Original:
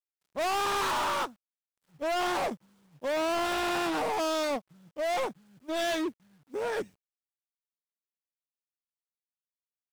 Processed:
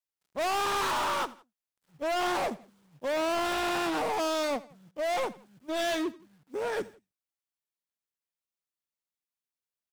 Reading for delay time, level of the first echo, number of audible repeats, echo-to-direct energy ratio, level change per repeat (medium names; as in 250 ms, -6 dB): 84 ms, -20.0 dB, 2, -19.0 dB, -7.0 dB